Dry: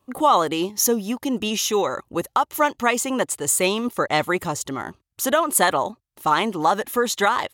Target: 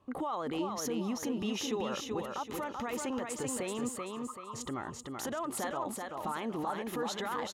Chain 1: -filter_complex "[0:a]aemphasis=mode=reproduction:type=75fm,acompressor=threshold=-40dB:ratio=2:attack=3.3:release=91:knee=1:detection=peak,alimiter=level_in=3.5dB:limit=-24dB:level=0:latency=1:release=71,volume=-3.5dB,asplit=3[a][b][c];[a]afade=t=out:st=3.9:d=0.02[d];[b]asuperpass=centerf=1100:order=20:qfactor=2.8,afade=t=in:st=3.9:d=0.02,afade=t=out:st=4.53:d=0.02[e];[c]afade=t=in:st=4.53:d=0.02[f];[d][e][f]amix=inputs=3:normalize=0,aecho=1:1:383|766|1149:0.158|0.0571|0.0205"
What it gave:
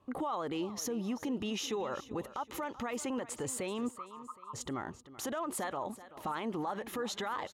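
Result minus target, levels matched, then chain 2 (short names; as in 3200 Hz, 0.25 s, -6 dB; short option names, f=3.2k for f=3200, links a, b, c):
echo-to-direct -12 dB
-filter_complex "[0:a]aemphasis=mode=reproduction:type=75fm,acompressor=threshold=-40dB:ratio=2:attack=3.3:release=91:knee=1:detection=peak,alimiter=level_in=3.5dB:limit=-24dB:level=0:latency=1:release=71,volume=-3.5dB,asplit=3[a][b][c];[a]afade=t=out:st=3.9:d=0.02[d];[b]asuperpass=centerf=1100:order=20:qfactor=2.8,afade=t=in:st=3.9:d=0.02,afade=t=out:st=4.53:d=0.02[e];[c]afade=t=in:st=4.53:d=0.02[f];[d][e][f]amix=inputs=3:normalize=0,aecho=1:1:383|766|1149|1532|1915:0.631|0.227|0.0818|0.0294|0.0106"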